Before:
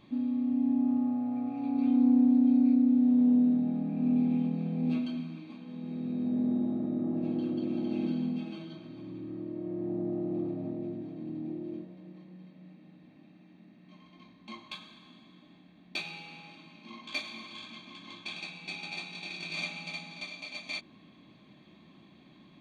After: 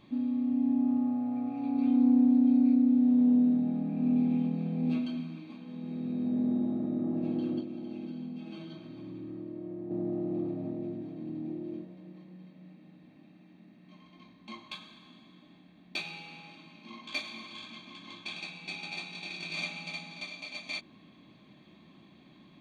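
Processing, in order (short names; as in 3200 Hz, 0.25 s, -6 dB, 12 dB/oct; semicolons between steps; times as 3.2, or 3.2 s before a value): 7.6–9.91 compressor 5:1, threshold -37 dBFS, peak gain reduction 9.5 dB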